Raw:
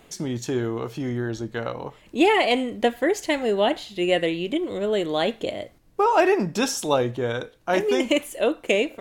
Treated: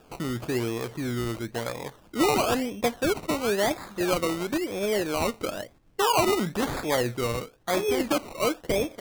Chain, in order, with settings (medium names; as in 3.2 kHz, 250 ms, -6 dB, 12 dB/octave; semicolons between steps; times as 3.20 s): in parallel at -3 dB: peak limiter -16.5 dBFS, peak gain reduction 11 dB; on the sum: decimation with a swept rate 21×, swing 60% 0.99 Hz; trim -7 dB